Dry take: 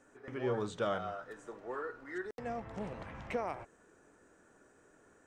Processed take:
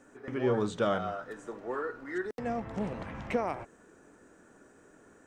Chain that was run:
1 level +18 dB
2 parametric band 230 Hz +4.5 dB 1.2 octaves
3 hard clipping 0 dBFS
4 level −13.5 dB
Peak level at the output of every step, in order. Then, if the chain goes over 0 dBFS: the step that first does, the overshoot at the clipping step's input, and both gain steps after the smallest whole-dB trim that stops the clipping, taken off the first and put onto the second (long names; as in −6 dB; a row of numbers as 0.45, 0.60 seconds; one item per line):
−4.0, −3.0, −3.0, −16.5 dBFS
no step passes full scale